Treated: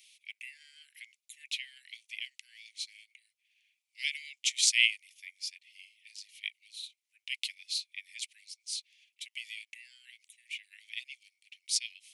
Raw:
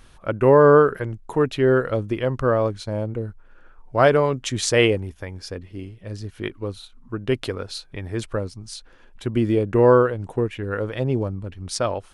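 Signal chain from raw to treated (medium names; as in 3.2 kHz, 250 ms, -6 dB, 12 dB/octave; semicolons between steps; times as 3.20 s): steep high-pass 2.1 kHz 96 dB/octave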